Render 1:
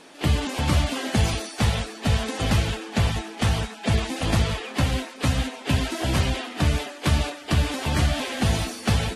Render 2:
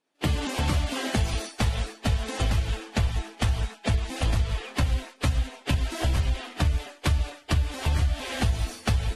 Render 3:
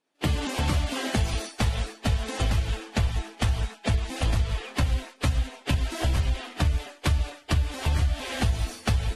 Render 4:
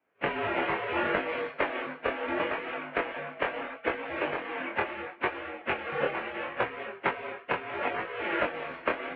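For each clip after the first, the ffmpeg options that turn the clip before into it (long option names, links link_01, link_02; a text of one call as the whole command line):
ffmpeg -i in.wav -af "agate=range=-33dB:threshold=-30dB:ratio=3:detection=peak,asubboost=boost=6.5:cutoff=74,acompressor=threshold=-21dB:ratio=6" out.wav
ffmpeg -i in.wav -af anull out.wav
ffmpeg -i in.wav -filter_complex "[0:a]asplit=2[link_01][link_02];[link_02]asoftclip=type=hard:threshold=-22dB,volume=-8.5dB[link_03];[link_01][link_03]amix=inputs=2:normalize=0,flanger=delay=19.5:depth=5.9:speed=0.74,highpass=frequency=490:width_type=q:width=0.5412,highpass=frequency=490:width_type=q:width=1.307,lowpass=frequency=2600:width_type=q:width=0.5176,lowpass=frequency=2600:width_type=q:width=0.7071,lowpass=frequency=2600:width_type=q:width=1.932,afreqshift=-180,volume=6dB" out.wav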